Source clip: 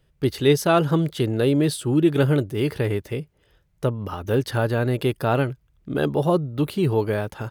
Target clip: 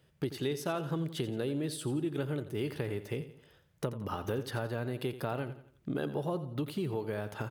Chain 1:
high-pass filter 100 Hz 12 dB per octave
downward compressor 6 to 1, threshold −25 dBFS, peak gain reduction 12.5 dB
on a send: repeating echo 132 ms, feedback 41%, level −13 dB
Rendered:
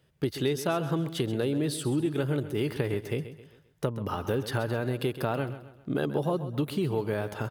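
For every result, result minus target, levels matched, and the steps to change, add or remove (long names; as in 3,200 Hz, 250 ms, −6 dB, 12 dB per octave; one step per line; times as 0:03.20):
echo 46 ms late; downward compressor: peak gain reduction −6 dB
change: repeating echo 86 ms, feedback 41%, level −13 dB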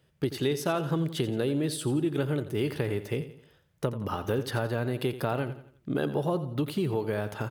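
downward compressor: peak gain reduction −6 dB
change: downward compressor 6 to 1, threshold −32 dBFS, peak gain reduction 18.5 dB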